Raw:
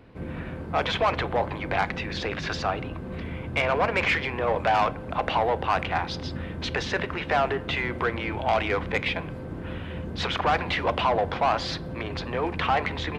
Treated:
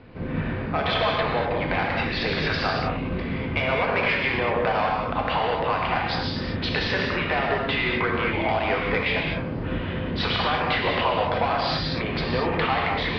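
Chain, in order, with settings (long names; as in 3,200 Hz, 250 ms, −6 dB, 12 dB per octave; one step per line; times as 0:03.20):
elliptic low-pass filter 4,900 Hz, stop band 50 dB
downward compressor, threshold −27 dBFS, peak gain reduction 8 dB
reverb whose tail is shaped and stops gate 270 ms flat, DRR −1.5 dB
level +4 dB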